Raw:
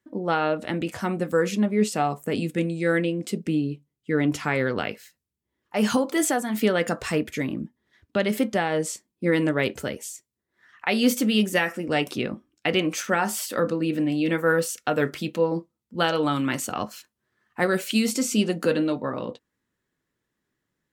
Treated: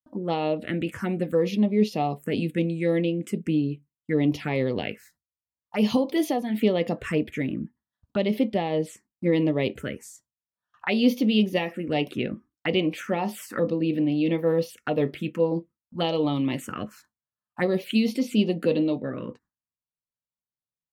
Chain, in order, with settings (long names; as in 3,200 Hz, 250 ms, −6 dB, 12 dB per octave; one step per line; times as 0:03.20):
high-shelf EQ 5,100 Hz −5 dB, from 0:06.33 −11 dB
noise gate with hold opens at −47 dBFS
phaser swept by the level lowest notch 340 Hz, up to 1,500 Hz, full sweep at −21 dBFS
level +1 dB